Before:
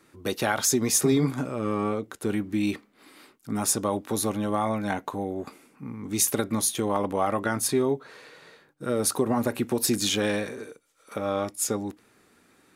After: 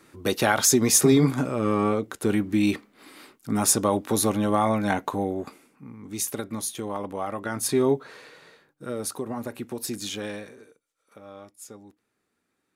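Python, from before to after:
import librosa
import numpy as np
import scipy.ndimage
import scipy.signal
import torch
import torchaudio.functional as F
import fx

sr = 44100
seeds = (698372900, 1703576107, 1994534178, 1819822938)

y = fx.gain(x, sr, db=fx.line((5.26, 4.0), (5.85, -5.5), (7.4, -5.5), (7.9, 4.0), (9.19, -7.5), (10.24, -7.5), (11.2, -16.5)))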